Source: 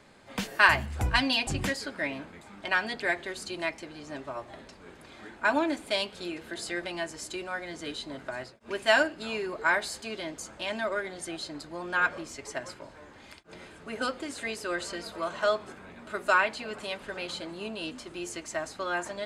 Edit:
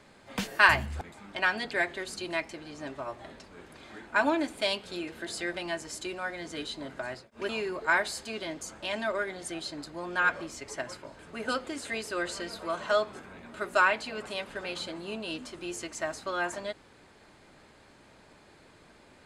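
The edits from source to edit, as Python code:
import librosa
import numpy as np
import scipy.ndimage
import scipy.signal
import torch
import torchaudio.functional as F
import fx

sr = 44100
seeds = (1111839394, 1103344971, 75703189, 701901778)

y = fx.edit(x, sr, fx.cut(start_s=1.01, length_s=1.29),
    fx.cut(start_s=8.78, length_s=0.48),
    fx.cut(start_s=12.96, length_s=0.76), tone=tone)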